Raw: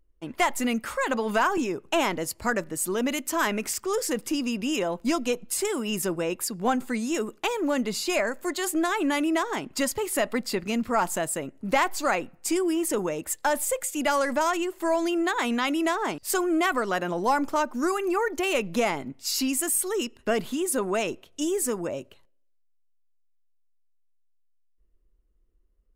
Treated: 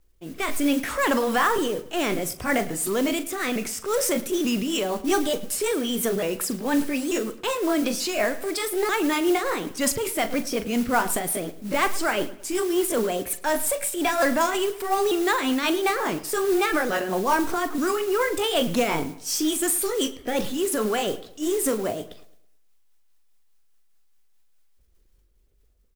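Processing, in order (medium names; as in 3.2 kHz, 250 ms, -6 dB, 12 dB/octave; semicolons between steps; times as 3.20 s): sawtooth pitch modulation +3.5 st, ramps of 889 ms; transient shaper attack -4 dB, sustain +6 dB; rotary cabinet horn 0.65 Hz, later 5.5 Hz, at 3.94 s; modulation noise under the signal 17 dB; doubling 42 ms -13.5 dB; on a send: filtered feedback delay 109 ms, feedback 37%, low-pass 3.7 kHz, level -17 dB; on the sum: trim +5.5 dB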